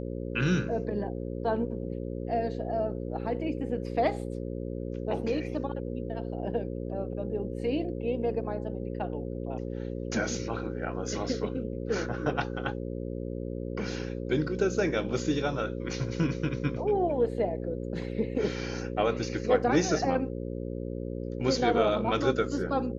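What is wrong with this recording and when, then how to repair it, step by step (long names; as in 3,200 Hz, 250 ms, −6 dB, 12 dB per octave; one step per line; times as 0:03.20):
mains buzz 60 Hz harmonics 9 −35 dBFS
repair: hum removal 60 Hz, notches 9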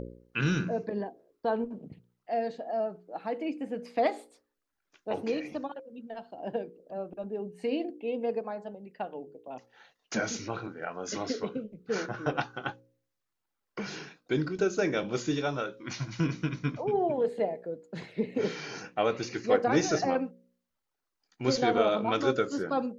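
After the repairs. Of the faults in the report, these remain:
none of them is left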